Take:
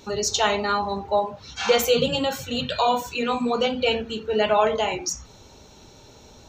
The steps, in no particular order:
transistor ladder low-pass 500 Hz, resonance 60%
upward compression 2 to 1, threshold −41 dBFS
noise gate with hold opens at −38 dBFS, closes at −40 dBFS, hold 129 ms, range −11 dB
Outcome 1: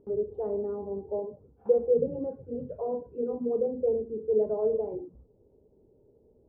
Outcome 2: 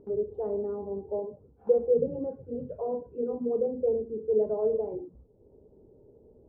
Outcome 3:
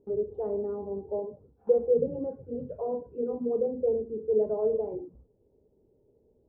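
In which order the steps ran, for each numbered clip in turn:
transistor ladder low-pass, then upward compression, then noise gate with hold
transistor ladder low-pass, then noise gate with hold, then upward compression
upward compression, then transistor ladder low-pass, then noise gate with hold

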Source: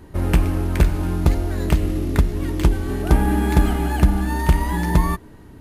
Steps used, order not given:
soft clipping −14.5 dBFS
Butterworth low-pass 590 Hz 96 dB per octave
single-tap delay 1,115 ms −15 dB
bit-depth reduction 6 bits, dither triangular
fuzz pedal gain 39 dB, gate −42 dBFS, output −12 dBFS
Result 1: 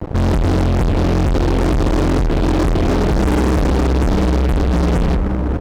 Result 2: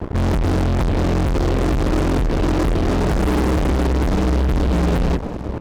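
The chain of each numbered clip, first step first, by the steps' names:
soft clipping, then single-tap delay, then bit-depth reduction, then Butterworth low-pass, then fuzz pedal
bit-depth reduction, then Butterworth low-pass, then fuzz pedal, then soft clipping, then single-tap delay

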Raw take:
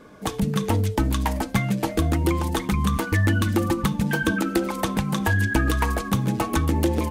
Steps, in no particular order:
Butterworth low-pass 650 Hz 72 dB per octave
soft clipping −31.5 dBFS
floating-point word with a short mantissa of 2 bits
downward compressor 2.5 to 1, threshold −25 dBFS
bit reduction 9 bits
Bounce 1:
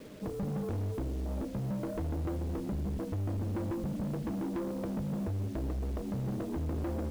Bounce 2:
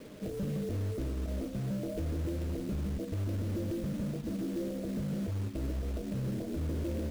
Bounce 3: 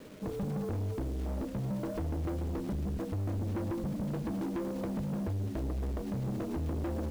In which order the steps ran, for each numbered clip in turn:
downward compressor, then floating-point word with a short mantissa, then Butterworth low-pass, then soft clipping, then bit reduction
downward compressor, then soft clipping, then Butterworth low-pass, then bit reduction, then floating-point word with a short mantissa
Butterworth low-pass, then floating-point word with a short mantissa, then downward compressor, then soft clipping, then bit reduction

